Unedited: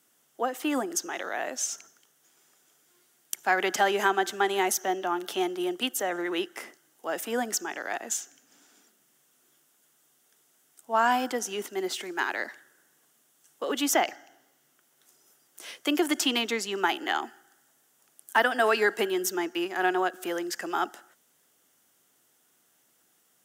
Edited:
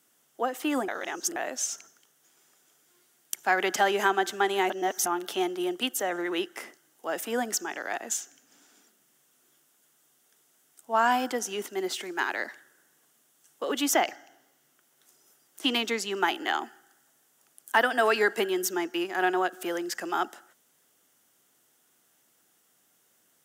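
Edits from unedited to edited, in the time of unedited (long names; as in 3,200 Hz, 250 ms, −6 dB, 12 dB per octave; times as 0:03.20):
0:00.88–0:01.36: reverse
0:04.70–0:05.06: reverse
0:15.64–0:16.25: remove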